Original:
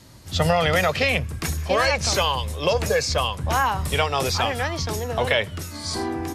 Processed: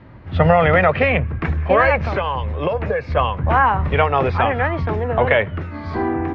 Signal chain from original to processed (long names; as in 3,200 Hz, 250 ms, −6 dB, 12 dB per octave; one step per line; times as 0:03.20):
low-pass filter 2,200 Hz 24 dB per octave
0:02.02–0:03.17: downward compressor, threshold −24 dBFS, peak gain reduction 7.5 dB
level +6.5 dB